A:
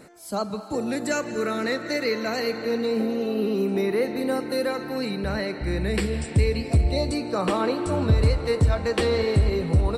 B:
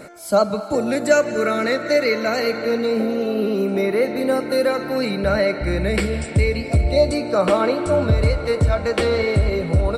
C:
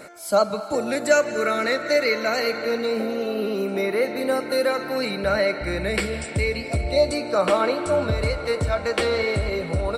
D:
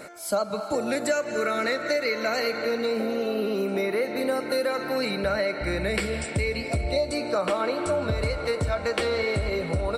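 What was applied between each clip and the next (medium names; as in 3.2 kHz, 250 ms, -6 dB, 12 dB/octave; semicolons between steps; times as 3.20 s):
in parallel at 0 dB: gain riding; on the sum: small resonant body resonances 600/1400/2200 Hz, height 10 dB, ringing for 35 ms; trim -3 dB
bass shelf 390 Hz -8.5 dB
compression 5:1, threshold -22 dBFS, peak gain reduction 9.5 dB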